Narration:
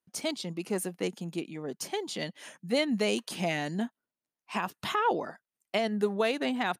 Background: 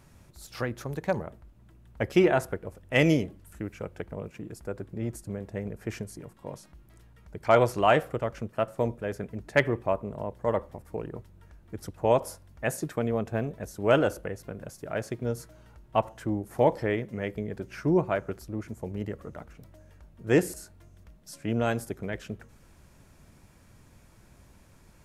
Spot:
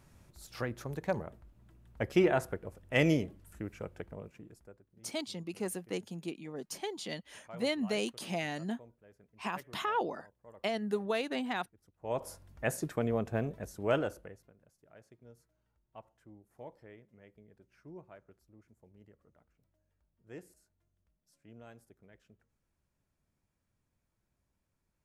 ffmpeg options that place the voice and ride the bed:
-filter_complex "[0:a]adelay=4900,volume=-5dB[a];[1:a]volume=19.5dB,afade=t=out:st=3.85:d=0.98:silence=0.0707946,afade=t=in:st=11.99:d=0.43:silence=0.0595662,afade=t=out:st=13.49:d=1.04:silence=0.0749894[b];[a][b]amix=inputs=2:normalize=0"

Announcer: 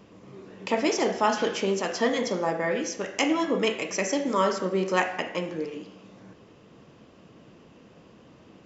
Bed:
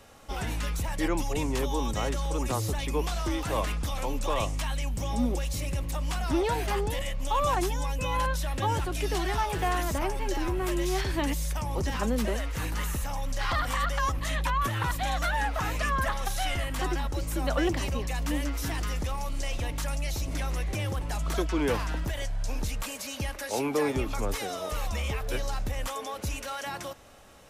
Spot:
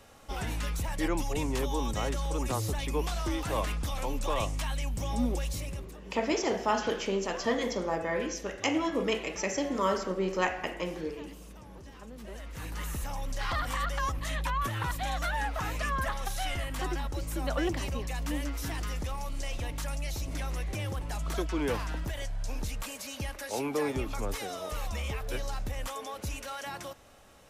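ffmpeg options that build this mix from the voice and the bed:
-filter_complex "[0:a]adelay=5450,volume=-4.5dB[a];[1:a]volume=14dB,afade=t=out:st=5.48:d=0.49:silence=0.133352,afade=t=in:st=12.18:d=0.86:silence=0.158489[b];[a][b]amix=inputs=2:normalize=0"

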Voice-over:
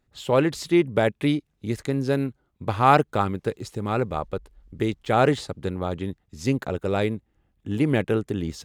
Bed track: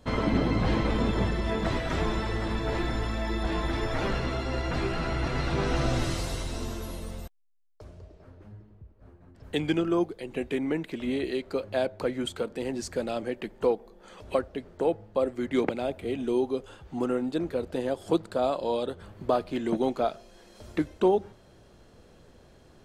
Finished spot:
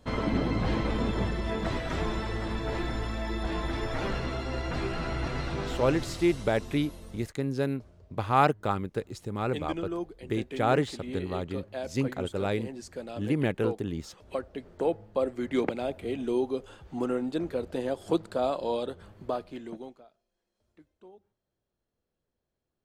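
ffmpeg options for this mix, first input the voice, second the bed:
-filter_complex "[0:a]adelay=5500,volume=-5.5dB[a];[1:a]volume=4.5dB,afade=t=out:st=5.26:d=0.59:silence=0.501187,afade=t=in:st=14.26:d=0.48:silence=0.446684,afade=t=out:st=18.73:d=1.31:silence=0.0375837[b];[a][b]amix=inputs=2:normalize=0"

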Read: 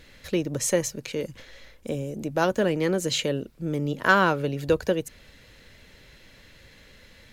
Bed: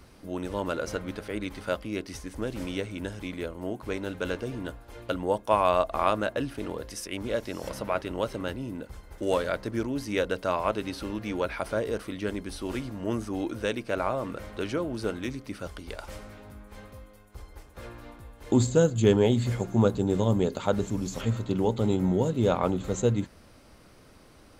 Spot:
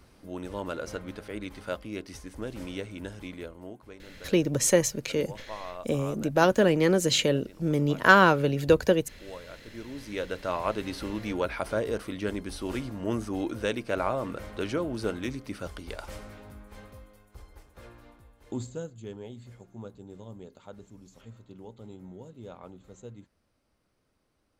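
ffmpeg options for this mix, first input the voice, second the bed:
-filter_complex "[0:a]adelay=4000,volume=2dB[a];[1:a]volume=13dB,afade=t=out:st=3.25:d=0.72:silence=0.223872,afade=t=in:st=9.62:d=1.37:silence=0.141254,afade=t=out:st=16.29:d=2.71:silence=0.0944061[b];[a][b]amix=inputs=2:normalize=0"

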